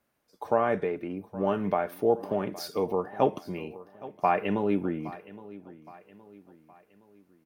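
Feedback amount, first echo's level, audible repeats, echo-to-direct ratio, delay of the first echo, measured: 44%, −18.0 dB, 3, −17.0 dB, 817 ms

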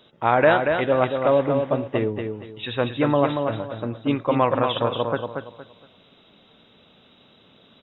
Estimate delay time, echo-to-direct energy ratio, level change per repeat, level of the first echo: 233 ms, −5.0 dB, −11.0 dB, −5.5 dB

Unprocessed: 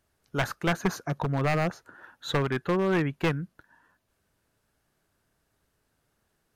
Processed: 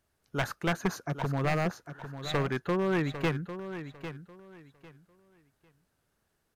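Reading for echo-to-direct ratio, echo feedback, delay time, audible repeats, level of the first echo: −11.0 dB, 23%, 800 ms, 2, −11.0 dB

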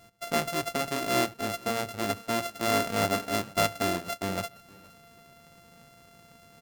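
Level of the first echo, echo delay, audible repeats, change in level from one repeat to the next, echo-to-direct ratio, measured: −23.0 dB, 468 ms, 1, repeats not evenly spaced, −23.0 dB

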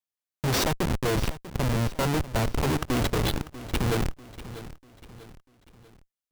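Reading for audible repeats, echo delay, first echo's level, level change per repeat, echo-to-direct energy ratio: 3, 643 ms, −15.0 dB, −7.5 dB, −14.0 dB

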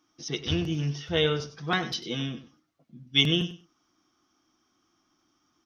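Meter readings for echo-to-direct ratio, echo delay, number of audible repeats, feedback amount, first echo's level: −13.5 dB, 97 ms, 2, 16%, −13.5 dB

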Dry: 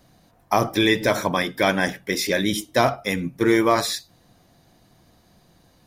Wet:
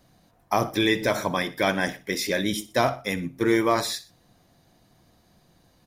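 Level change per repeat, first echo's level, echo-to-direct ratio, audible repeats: −6.0 dB, −18.5 dB, −17.5 dB, 2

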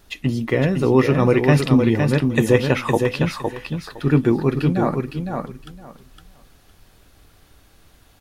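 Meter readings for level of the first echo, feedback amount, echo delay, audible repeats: −5.0 dB, 18%, 511 ms, 3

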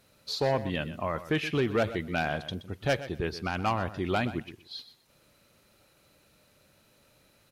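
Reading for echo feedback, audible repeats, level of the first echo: 16%, 2, −14.0 dB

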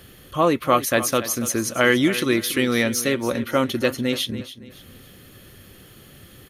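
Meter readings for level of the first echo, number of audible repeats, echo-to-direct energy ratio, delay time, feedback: −14.0 dB, 3, −13.5 dB, 283 ms, 33%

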